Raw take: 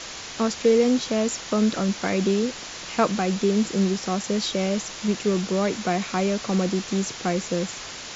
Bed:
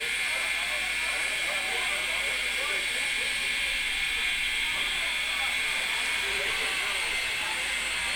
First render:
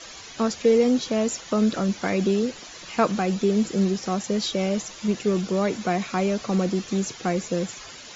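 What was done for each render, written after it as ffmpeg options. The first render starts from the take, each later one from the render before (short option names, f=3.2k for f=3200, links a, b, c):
-af "afftdn=nr=11:nf=-37"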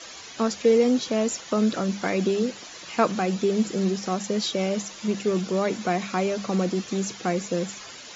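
-af "highpass=f=110:p=1,bandreject=f=50:t=h:w=6,bandreject=f=100:t=h:w=6,bandreject=f=150:t=h:w=6,bandreject=f=200:t=h:w=6"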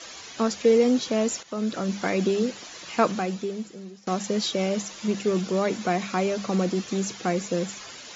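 -filter_complex "[0:a]asplit=3[a][b][c];[a]atrim=end=1.43,asetpts=PTS-STARTPTS,afade=t=out:st=1.426:d=0.004:c=hsin:silence=0.251189[d];[b]atrim=start=1.43:end=4.07,asetpts=PTS-STARTPTS,afade=t=in:d=0.55:silence=0.251189,afade=t=out:st=1.65:d=0.99:c=qua:silence=0.105925[e];[c]atrim=start=4.07,asetpts=PTS-STARTPTS,afade=t=in:d=0.004:c=hsin:silence=0.105925[f];[d][e][f]concat=n=3:v=0:a=1"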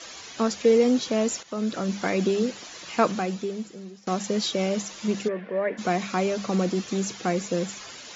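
-filter_complex "[0:a]asplit=3[a][b][c];[a]afade=t=out:st=5.27:d=0.02[d];[b]highpass=340,equalizer=f=350:t=q:w=4:g=-7,equalizer=f=560:t=q:w=4:g=4,equalizer=f=820:t=q:w=4:g=-7,equalizer=f=1.3k:t=q:w=4:g=-10,equalizer=f=1.8k:t=q:w=4:g=9,lowpass=f=2.1k:w=0.5412,lowpass=f=2.1k:w=1.3066,afade=t=in:st=5.27:d=0.02,afade=t=out:st=5.77:d=0.02[e];[c]afade=t=in:st=5.77:d=0.02[f];[d][e][f]amix=inputs=3:normalize=0"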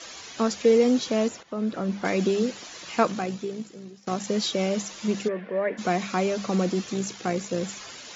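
-filter_complex "[0:a]asettb=1/sr,asplit=3[a][b][c];[a]atrim=end=1.284[d];[b]atrim=start=1.28:end=2.05,asetpts=PTS-STARTPTS,afade=t=in:d=0.004:c=qsin,afade=t=out:st=0.766:d=0.004:c=qsin,lowpass=f=1.7k:p=1[e];[c]atrim=start=2.046[f];[d][e]acrossfade=d=0.004:c1=hsin:c2=qsin[g];[g][f]acrossfade=d=0.004:c1=qsin:c2=hsin,asettb=1/sr,asplit=3[h][i][j];[h]atrim=end=3.034[k];[i]atrim=start=3.03:end=4.28,asetpts=PTS-STARTPTS,afade=t=in:d=0.004:c=qsin,afade=t=out:st=1.246:d=0.004:c=qsin,tremolo=f=58:d=0.4[l];[j]atrim=start=4.276[m];[k][l]acrossfade=d=0.004:c1=hsin:c2=qsin[n];[n][m]acrossfade=d=0.004:c1=qsin:c2=hsin,asettb=1/sr,asplit=3[o][p][q];[o]atrim=end=6.924[r];[p]atrim=start=6.92:end=7.64,asetpts=PTS-STARTPTS,afade=t=in:d=0.004:c=qsin,afade=t=out:st=0.716:d=0.004:c=qsin,tremolo=f=59:d=0.4[s];[q]atrim=start=7.636[t];[r][s]acrossfade=d=0.004:c1=hsin:c2=qsin[u];[u][t]acrossfade=d=0.004:c1=qsin:c2=hsin"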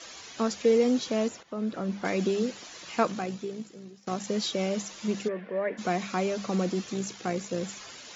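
-af "volume=-3.5dB"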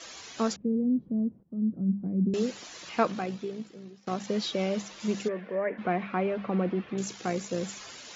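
-filter_complex "[0:a]asettb=1/sr,asplit=3[a][b][c];[a]atrim=end=0.564[d];[b]atrim=start=0.56:end=2.34,asetpts=PTS-STARTPTS,afade=t=in:d=0.004:c=qsin,afade=t=out:st=1.776:d=0.004:c=qsin,lowpass=f=190:t=q:w=1.9[e];[c]atrim=start=2.336[f];[d][e]acrossfade=d=0.004:c1=hsin:c2=qsin[g];[g][f]acrossfade=d=0.004:c1=qsin:c2=hsin,asettb=1/sr,asplit=3[h][i][j];[h]atrim=end=2.894[k];[i]atrim=start=2.89:end=5,asetpts=PTS-STARTPTS,afade=t=in:d=0.004:c=qsin,afade=t=out:st=2.106:d=0.004:c=qsin,lowpass=4.9k[l];[j]atrim=start=4.996[m];[k][l]acrossfade=d=0.004:c1=hsin:c2=qsin[n];[n][m]acrossfade=d=0.004:c1=qsin:c2=hsin,asettb=1/sr,asplit=3[o][p][q];[o]atrim=end=5.554[r];[p]atrim=start=5.55:end=6.98,asetpts=PTS-STARTPTS,afade=t=in:d=0.004:c=qsin,afade=t=out:st=1.426:d=0.004:c=qsin,lowpass=f=2.6k:w=0.5412,lowpass=f=2.6k:w=1.3066[s];[q]atrim=start=6.976[t];[r][s]acrossfade=d=0.004:c1=hsin:c2=qsin[u];[u][t]acrossfade=d=0.004:c1=qsin:c2=hsin"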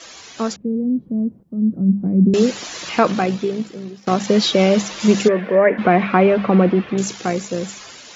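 -af "dynaudnorm=f=320:g=11:m=12.5dB,alimiter=level_in=5.5dB:limit=-1dB:release=50:level=0:latency=1"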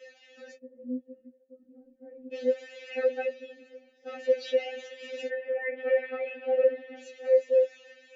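-filter_complex "[0:a]asplit=3[a][b][c];[a]bandpass=f=530:t=q:w=8,volume=0dB[d];[b]bandpass=f=1.84k:t=q:w=8,volume=-6dB[e];[c]bandpass=f=2.48k:t=q:w=8,volume=-9dB[f];[d][e][f]amix=inputs=3:normalize=0,afftfilt=real='re*3.46*eq(mod(b,12),0)':imag='im*3.46*eq(mod(b,12),0)':win_size=2048:overlap=0.75"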